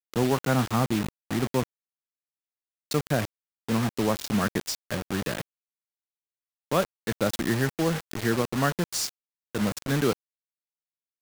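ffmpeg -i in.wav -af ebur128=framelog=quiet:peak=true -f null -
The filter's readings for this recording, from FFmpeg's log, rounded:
Integrated loudness:
  I:         -27.8 LUFS
  Threshold: -37.9 LUFS
Loudness range:
  LRA:         2.9 LU
  Threshold: -49.3 LUFS
  LRA low:   -30.7 LUFS
  LRA high:  -27.7 LUFS
True peak:
  Peak:      -10.3 dBFS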